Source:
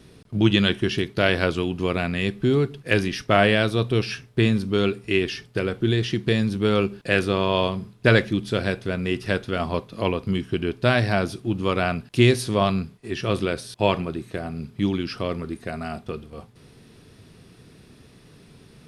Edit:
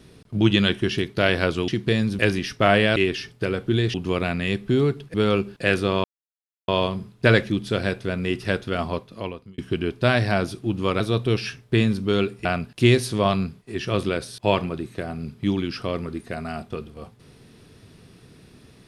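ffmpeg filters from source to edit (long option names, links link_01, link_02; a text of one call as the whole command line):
ffmpeg -i in.wav -filter_complex "[0:a]asplit=10[link_01][link_02][link_03][link_04][link_05][link_06][link_07][link_08][link_09][link_10];[link_01]atrim=end=1.682[link_11];[link_02]atrim=start=6.078:end=6.592[link_12];[link_03]atrim=start=2.878:end=3.652[link_13];[link_04]atrim=start=5.098:end=6.082[link_14];[link_05]atrim=start=1.678:end=2.882[link_15];[link_06]atrim=start=6.588:end=7.49,asetpts=PTS-STARTPTS,afade=type=out:start_time=0.898:duration=0.004:curve=hsin,apad=pad_dur=0.64[link_16];[link_07]atrim=start=7.49:end=10.39,asetpts=PTS-STARTPTS,afade=type=in:duration=0.004:curve=hsin,afade=type=out:start_time=2.12:duration=0.78[link_17];[link_08]atrim=start=10.39:end=11.812,asetpts=PTS-STARTPTS,afade=type=in:duration=0.004:curve=hsin[link_18];[link_09]atrim=start=3.648:end=5.102[link_19];[link_10]atrim=start=11.808[link_20];[link_11][link_12]acrossfade=duration=0.004:curve1=hsin:curve2=hsin[link_21];[link_21][link_13]acrossfade=duration=0.004:curve1=hsin:curve2=hsin[link_22];[link_22][link_14]acrossfade=duration=0.004:curve1=hsin:curve2=hsin[link_23];[link_23][link_15]acrossfade=duration=0.004:curve1=hsin:curve2=hsin[link_24];[link_16][link_17][link_18]concat=n=3:v=0:a=1[link_25];[link_24][link_25]acrossfade=duration=0.004:curve1=hsin:curve2=hsin[link_26];[link_26][link_19]acrossfade=duration=0.004:curve1=hsin:curve2=hsin[link_27];[link_27][link_20]acrossfade=duration=0.004:curve1=hsin:curve2=hsin" out.wav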